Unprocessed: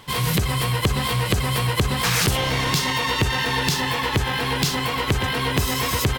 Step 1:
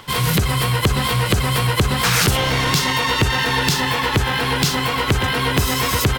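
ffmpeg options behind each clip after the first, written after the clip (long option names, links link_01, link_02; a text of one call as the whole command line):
ffmpeg -i in.wav -filter_complex "[0:a]equalizer=frequency=1400:width=7.6:gain=5,acrossover=split=240|6500[link_01][link_02][link_03];[link_02]acompressor=mode=upward:threshold=-45dB:ratio=2.5[link_04];[link_01][link_04][link_03]amix=inputs=3:normalize=0,volume=3.5dB" out.wav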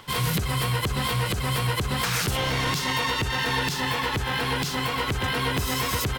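ffmpeg -i in.wav -af "alimiter=limit=-8.5dB:level=0:latency=1:release=162,volume=-6dB" out.wav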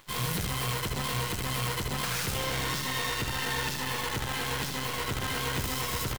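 ffmpeg -i in.wav -af "acrusher=bits=5:dc=4:mix=0:aa=0.000001,aecho=1:1:78:0.562,volume=-7.5dB" out.wav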